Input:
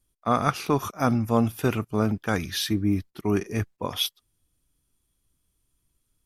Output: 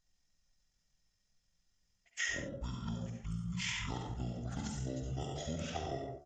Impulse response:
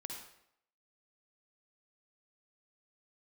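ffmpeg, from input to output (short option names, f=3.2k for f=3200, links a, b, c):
-filter_complex "[0:a]areverse[a];[1:a]atrim=start_sample=2205,afade=t=out:st=0.26:d=0.01,atrim=end_sample=11907[b];[a][b]afir=irnorm=-1:irlink=0,asetrate=24750,aresample=44100,atempo=1.7818,bandreject=f=72.14:t=h:w=4,bandreject=f=144.28:t=h:w=4,bandreject=f=216.42:t=h:w=4,bandreject=f=288.56:t=h:w=4,bandreject=f=360.7:t=h:w=4,bandreject=f=432.84:t=h:w=4,bandreject=f=504.98:t=h:w=4,bandreject=f=577.12:t=h:w=4,bandreject=f=649.26:t=h:w=4,bandreject=f=721.4:t=h:w=4,bandreject=f=793.54:t=h:w=4,bandreject=f=865.68:t=h:w=4,bandreject=f=937.82:t=h:w=4,bandreject=f=1.00996k:t=h:w=4,bandreject=f=1.0821k:t=h:w=4,bandreject=f=1.15424k:t=h:w=4,bandreject=f=1.22638k:t=h:w=4,bandreject=f=1.29852k:t=h:w=4,bandreject=f=1.37066k:t=h:w=4,bandreject=f=1.4428k:t=h:w=4,bandreject=f=1.51494k:t=h:w=4,bandreject=f=1.58708k:t=h:w=4,bandreject=f=1.65922k:t=h:w=4,bandreject=f=1.73136k:t=h:w=4,acrossover=split=2700[c][d];[c]acompressor=threshold=-37dB:ratio=4[e];[e][d]amix=inputs=2:normalize=0,volume=-1.5dB"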